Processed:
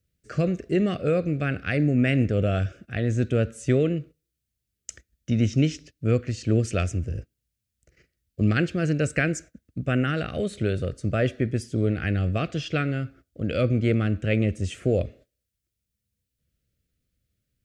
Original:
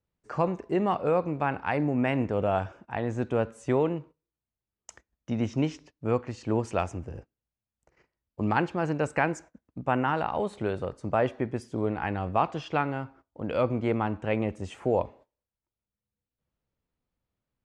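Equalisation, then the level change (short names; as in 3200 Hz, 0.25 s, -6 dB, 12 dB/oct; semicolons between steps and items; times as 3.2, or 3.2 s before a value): Butterworth band-stop 920 Hz, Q 1.2; bell 73 Hz +11.5 dB 3 oct; high shelf 2200 Hz +11 dB; 0.0 dB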